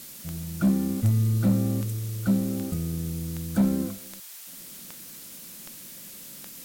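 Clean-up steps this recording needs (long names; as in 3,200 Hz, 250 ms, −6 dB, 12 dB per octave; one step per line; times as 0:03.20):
clipped peaks rebuilt −15.5 dBFS
click removal
noise reduction from a noise print 27 dB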